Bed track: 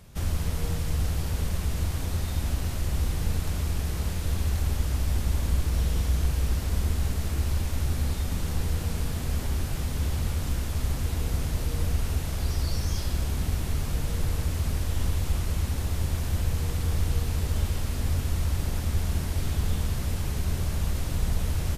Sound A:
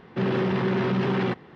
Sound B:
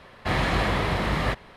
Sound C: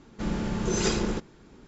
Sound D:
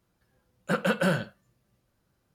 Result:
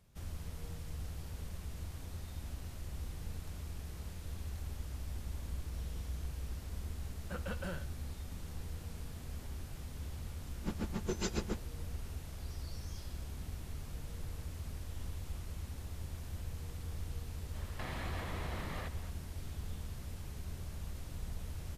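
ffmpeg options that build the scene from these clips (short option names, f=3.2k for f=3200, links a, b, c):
-filter_complex "[0:a]volume=-16dB[a];[3:a]aeval=exprs='val(0)*pow(10,-24*(0.5-0.5*cos(2*PI*7.2*n/s))/20)':c=same[b];[2:a]acompressor=threshold=-32dB:ratio=6:attack=3.2:release=140:knee=1:detection=peak[c];[4:a]atrim=end=2.34,asetpts=PTS-STARTPTS,volume=-17.5dB,afade=t=in:d=0.004:c=hsin,afade=t=out:st=2.336:d=0.004:c=hsin,adelay=6610[d];[b]atrim=end=1.67,asetpts=PTS-STARTPTS,volume=-5.5dB,afade=t=in:d=0.004:c=hsin,afade=t=out:st=1.666:d=0.004:c=hsin,adelay=10410[e];[c]atrim=end=1.56,asetpts=PTS-STARTPTS,volume=-7.5dB,afade=t=in:d=0.004:c=hsin,afade=t=out:st=1.556:d=0.004:c=hsin,adelay=17540[f];[a][d][e][f]amix=inputs=4:normalize=0"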